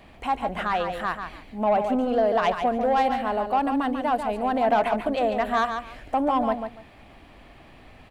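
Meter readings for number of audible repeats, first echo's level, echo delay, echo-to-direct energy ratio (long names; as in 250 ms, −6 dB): 2, −7.0 dB, 143 ms, −7.0 dB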